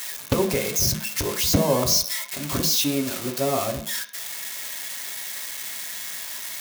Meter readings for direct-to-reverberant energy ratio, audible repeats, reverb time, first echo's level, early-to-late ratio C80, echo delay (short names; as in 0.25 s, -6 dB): 3.5 dB, none, 0.60 s, none, 14.0 dB, none